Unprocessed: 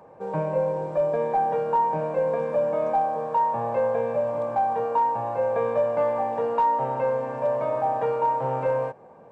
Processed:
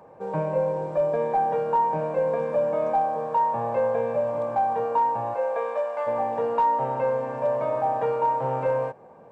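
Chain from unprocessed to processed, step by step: 5.33–6.06 HPF 400 Hz -> 840 Hz 12 dB/oct

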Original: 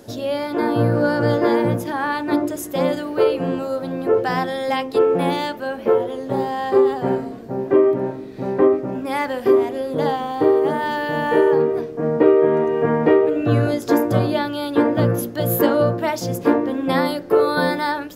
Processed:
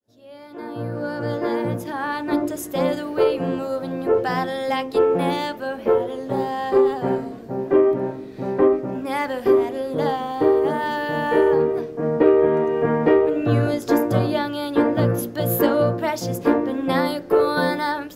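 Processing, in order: opening faded in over 2.52 s; added harmonics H 6 -31 dB, 8 -43 dB, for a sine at -2.5 dBFS; gain -1.5 dB

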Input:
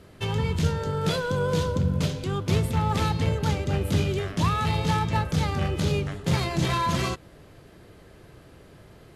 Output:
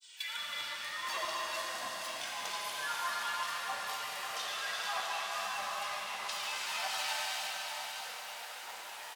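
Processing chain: high shelf 7400 Hz +11 dB; comb 1.5 ms, depth 92%; de-hum 54.92 Hz, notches 28; compressor 12:1, threshold -35 dBFS, peak gain reduction 21 dB; grains, spray 32 ms, pitch spread up and down by 7 st; LFO high-pass saw down 1.6 Hz 710–4200 Hz; diffused feedback echo 0.564 s, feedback 44%, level -5 dB; non-linear reverb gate 0.49 s flat, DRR -4.5 dB

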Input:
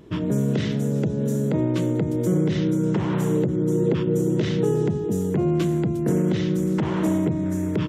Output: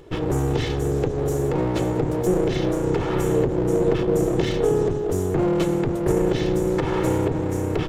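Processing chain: minimum comb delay 2.3 ms; gain +3 dB

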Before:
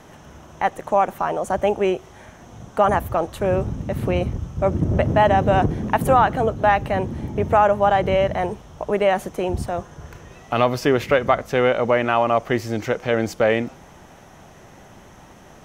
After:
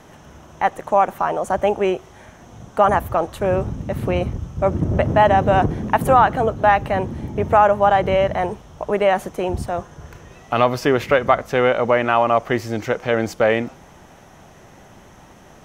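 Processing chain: dynamic EQ 1100 Hz, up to +3 dB, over -30 dBFS, Q 0.74

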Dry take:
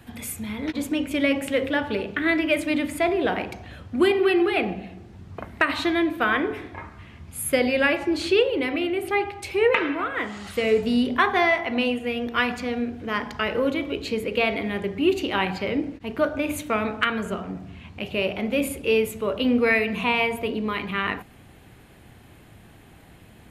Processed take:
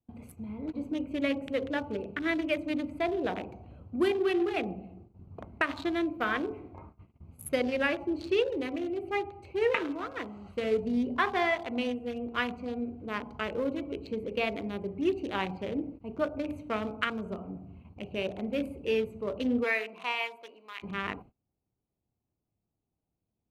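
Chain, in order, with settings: Wiener smoothing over 25 samples; gate -43 dBFS, range -28 dB; 19.63–20.82 HPF 430 Hz -> 1500 Hz 12 dB/oct; gain -7 dB

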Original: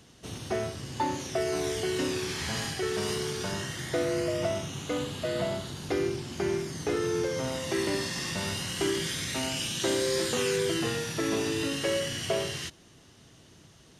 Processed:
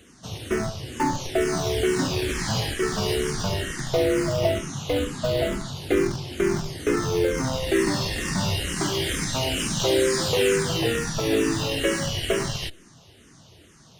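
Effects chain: in parallel at -4.5 dB: Schmitt trigger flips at -26.5 dBFS; on the sum: endless phaser -2.2 Hz; gain +7 dB

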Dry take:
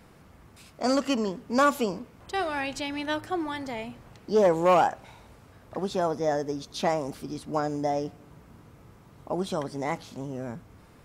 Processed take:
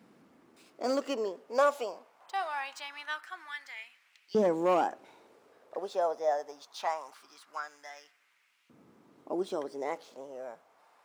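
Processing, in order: median filter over 3 samples; LFO high-pass saw up 0.23 Hz 220–2600 Hz; gain -8 dB

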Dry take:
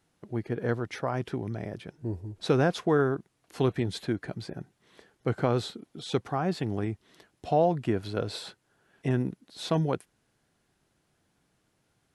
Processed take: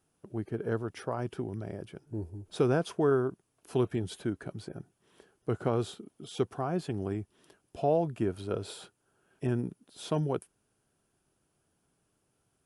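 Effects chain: varispeed -4%; thirty-one-band EQ 400 Hz +4 dB, 2000 Hz -7 dB, 4000 Hz -6 dB, 10000 Hz +9 dB; gain -4 dB

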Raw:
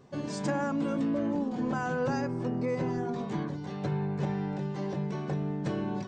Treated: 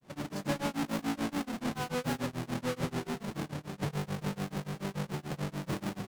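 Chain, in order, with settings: half-waves squared off; grains 0.158 s, grains 6.9/s, spray 28 ms, pitch spread up and down by 0 st; gain -4.5 dB

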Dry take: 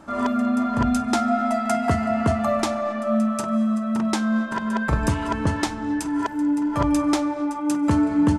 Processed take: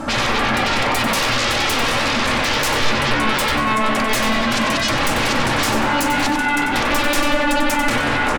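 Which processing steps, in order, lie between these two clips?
limiter -17.5 dBFS, peak gain reduction 10 dB; sine folder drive 14 dB, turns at -17.5 dBFS; frequency-shifting echo 94 ms, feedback 36%, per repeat -30 Hz, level -8 dB; on a send at -5 dB: reverb, pre-delay 3 ms

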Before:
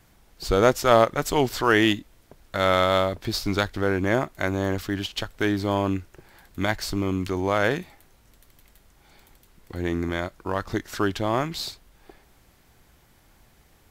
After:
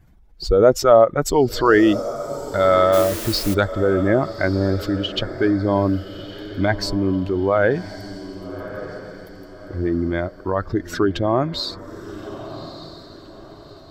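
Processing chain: spectral contrast raised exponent 1.8; diffused feedback echo 1.206 s, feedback 40%, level -13 dB; 2.92–3.53 added noise white -37 dBFS; gain +5.5 dB

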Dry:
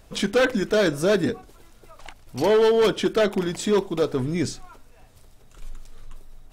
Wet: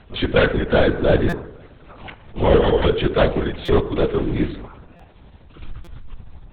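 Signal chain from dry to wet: 4.01–4.49 delta modulation 32 kbps, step -36.5 dBFS; FDN reverb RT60 1.1 s, low-frequency decay 0.7×, high-frequency decay 0.45×, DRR 10 dB; LPC vocoder at 8 kHz whisper; stuck buffer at 1.29/3.65/4.96/5.84, samples 256, times 5; gain +3.5 dB

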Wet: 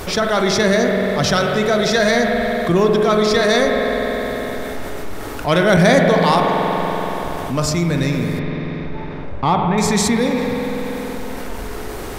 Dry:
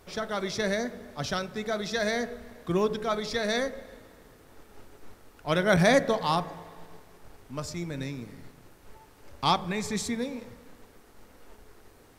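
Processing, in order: 8.39–9.78 tape spacing loss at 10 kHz 43 dB; in parallel at -8 dB: hard clip -25 dBFS, distortion -8 dB; on the sum: spring tank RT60 3 s, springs 47 ms, chirp 70 ms, DRR 4 dB; fast leveller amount 50%; gain +5 dB

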